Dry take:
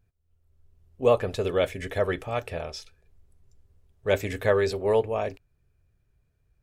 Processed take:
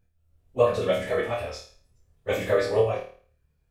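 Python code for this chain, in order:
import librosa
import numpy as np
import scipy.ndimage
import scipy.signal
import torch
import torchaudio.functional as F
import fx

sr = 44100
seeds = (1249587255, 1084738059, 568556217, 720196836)

y = fx.room_flutter(x, sr, wall_m=4.6, rt60_s=0.8)
y = fx.stretch_vocoder_free(y, sr, factor=0.56)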